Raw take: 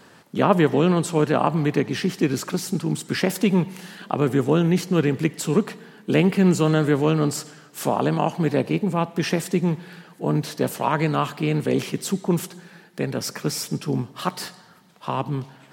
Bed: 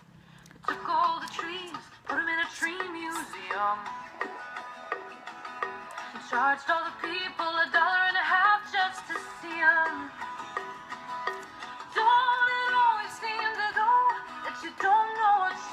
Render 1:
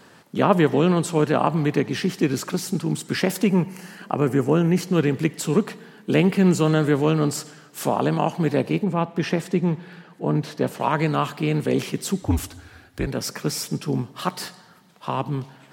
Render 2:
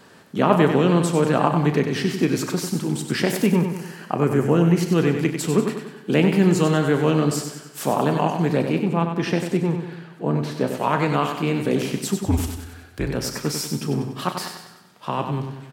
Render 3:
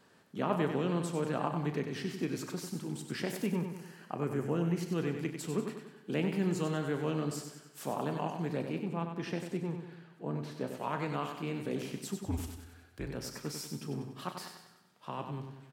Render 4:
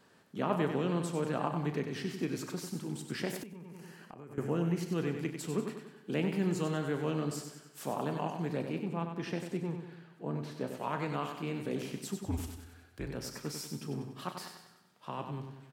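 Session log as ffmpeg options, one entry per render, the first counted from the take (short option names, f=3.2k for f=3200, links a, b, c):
-filter_complex "[0:a]asettb=1/sr,asplit=3[a][b][c];[a]atrim=end=3.444[d];[b]atrim=start=3.44:end=4.81,asetpts=PTS-STARTPTS,afade=t=in:d=0.004:c=qsin,afade=t=out:st=1.366:d=0.004:c=qsin,equalizer=f=3.6k:w=4.9:g=-15[e];[c]atrim=start=4.806[f];[d][e]acrossfade=d=0.004:c1=hsin:c2=qsin[g];[g][f]acrossfade=d=0.004:c1=qsin:c2=hsin,asettb=1/sr,asplit=3[h][i][j];[h]atrim=end=8.844[k];[i]atrim=start=8.84:end=10.8,asetpts=PTS-STARTPTS,afade=t=in:d=0.004:c=qsin,afade=t=out:st=1.956:d=0.004:c=qsin,highshelf=f=5.5k:g=-12[l];[j]atrim=start=10.796[m];[k][l]acrossfade=d=0.004:c1=hsin:c2=qsin[n];[n][m]acrossfade=d=0.004:c1=qsin:c2=hsin,asettb=1/sr,asplit=3[o][p][q];[o]atrim=end=12.224[r];[p]atrim=start=12.22:end=13.07,asetpts=PTS-STARTPTS,afade=t=in:d=0.004:c=qsin,afade=t=out:st=0.846:d=0.004:c=qsin,afreqshift=-88[s];[q]atrim=start=13.066[t];[r][s]acrossfade=d=0.004:c1=hsin:c2=qsin[u];[u][t]acrossfade=d=0.004:c1=qsin:c2=hsin"
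-filter_complex "[0:a]asplit=2[a][b];[b]adelay=35,volume=-12dB[c];[a][c]amix=inputs=2:normalize=0,asplit=2[d][e];[e]aecho=0:1:95|190|285|380|475|570:0.447|0.214|0.103|0.0494|0.0237|0.0114[f];[d][f]amix=inputs=2:normalize=0"
-af "volume=-14.5dB"
-filter_complex "[0:a]asettb=1/sr,asplit=3[a][b][c];[a]atrim=end=3.434[d];[b]atrim=start=3.43:end=4.38,asetpts=PTS-STARTPTS,afade=t=in:d=0.004:c=qsin,afade=t=out:st=0.946:d=0.004:c=qsin,acompressor=threshold=-44dB:ratio=10:attack=3.2:release=140:knee=1:detection=peak[e];[c]atrim=start=4.376[f];[d][e]acrossfade=d=0.004:c1=hsin:c2=qsin[g];[g][f]acrossfade=d=0.004:c1=qsin:c2=hsin"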